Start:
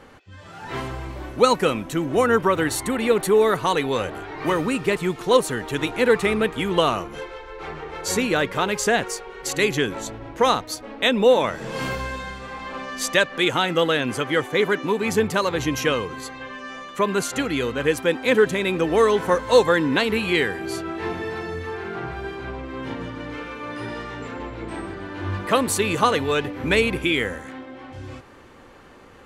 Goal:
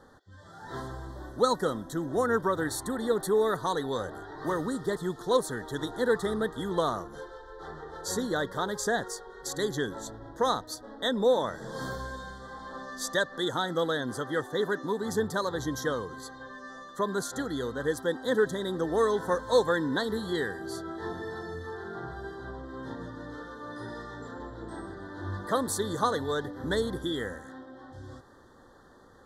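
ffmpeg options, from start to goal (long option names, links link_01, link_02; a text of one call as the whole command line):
ffmpeg -i in.wav -af "asuperstop=centerf=2500:order=12:qfactor=1.8,volume=-8dB" out.wav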